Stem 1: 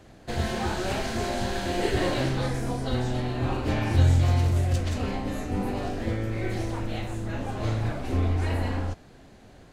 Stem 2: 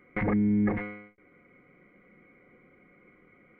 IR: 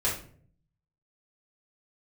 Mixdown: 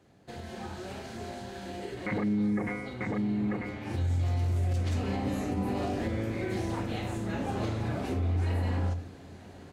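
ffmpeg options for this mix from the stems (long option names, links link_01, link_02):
-filter_complex "[0:a]lowshelf=frequency=330:gain=4.5,acompressor=threshold=-23dB:ratio=6,volume=-1dB,afade=type=in:start_time=3.8:duration=0.33:silence=0.266073,asplit=3[link_01][link_02][link_03];[link_02]volume=-16.5dB[link_04];[link_03]volume=-22dB[link_05];[1:a]adelay=1900,volume=2dB,asplit=2[link_06][link_07];[link_07]volume=-6.5dB[link_08];[2:a]atrim=start_sample=2205[link_09];[link_04][link_09]afir=irnorm=-1:irlink=0[link_10];[link_05][link_08]amix=inputs=2:normalize=0,aecho=0:1:942:1[link_11];[link_01][link_06][link_10][link_11]amix=inputs=4:normalize=0,highpass=100,alimiter=limit=-22dB:level=0:latency=1:release=124"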